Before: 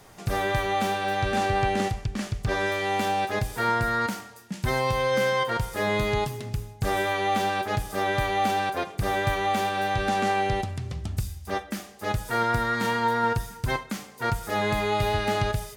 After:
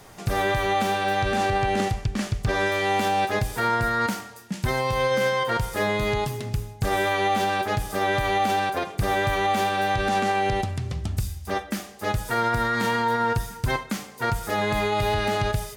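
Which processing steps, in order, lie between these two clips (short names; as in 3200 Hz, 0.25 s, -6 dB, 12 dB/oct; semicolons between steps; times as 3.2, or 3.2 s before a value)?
limiter -18.5 dBFS, peak gain reduction 4.5 dB; gain +3.5 dB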